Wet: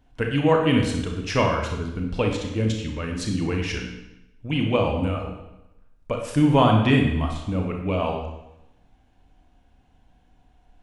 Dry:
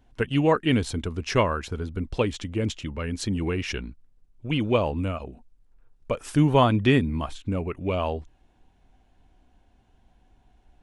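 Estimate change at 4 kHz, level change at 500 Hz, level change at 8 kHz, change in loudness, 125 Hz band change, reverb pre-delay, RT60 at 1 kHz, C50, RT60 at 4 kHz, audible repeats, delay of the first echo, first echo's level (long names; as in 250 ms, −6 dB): +2.0 dB, +1.5 dB, +1.0 dB, +2.5 dB, +2.5 dB, 27 ms, 0.90 s, 4.0 dB, 0.85 s, no echo audible, no echo audible, no echo audible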